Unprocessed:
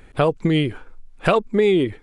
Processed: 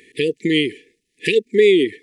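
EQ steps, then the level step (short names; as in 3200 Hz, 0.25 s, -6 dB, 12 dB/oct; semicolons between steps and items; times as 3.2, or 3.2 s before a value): HPF 380 Hz 12 dB/oct; brick-wall FIR band-stop 480–1700 Hz; +7.0 dB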